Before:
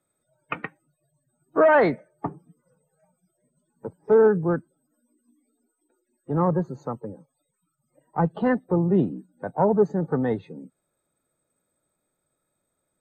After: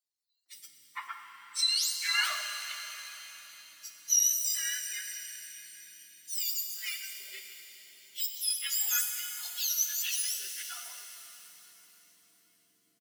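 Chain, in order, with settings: spectrum inverted on a logarithmic axis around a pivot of 1.6 kHz; three bands offset in time highs, mids, lows 460/550 ms, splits 550/3500 Hz; pitch-shifted reverb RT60 3.7 s, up +7 st, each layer -8 dB, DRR 4.5 dB; trim -3 dB

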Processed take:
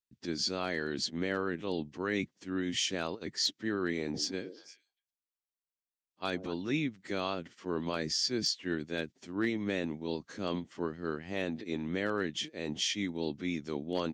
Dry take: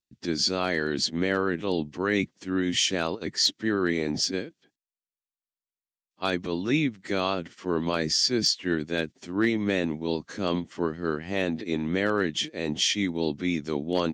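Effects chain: 4.02–6.54 s: repeats whose band climbs or falls 116 ms, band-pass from 390 Hz, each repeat 1.4 oct, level -8 dB; trim -7.5 dB

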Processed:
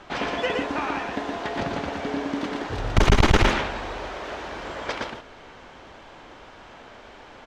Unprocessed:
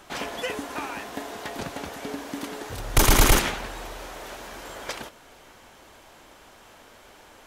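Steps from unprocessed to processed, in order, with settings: distance through air 160 m; on a send: delay 118 ms -3.5 dB; on the sum: transformer saturation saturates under 140 Hz; trim +5 dB

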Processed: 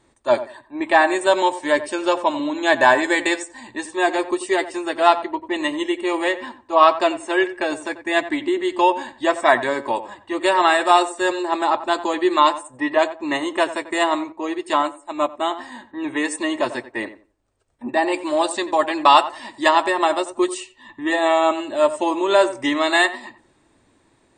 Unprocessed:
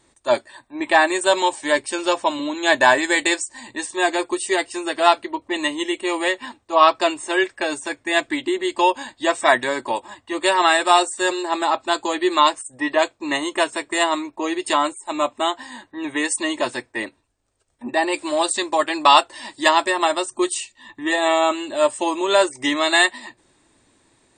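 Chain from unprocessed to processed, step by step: treble shelf 3 kHz -9 dB; on a send: tape echo 90 ms, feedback 23%, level -12 dB, low-pass 1.6 kHz; 14.32–15.51 s: on the sum: upward expansion 1.5:1, over -30 dBFS; trim +1.5 dB

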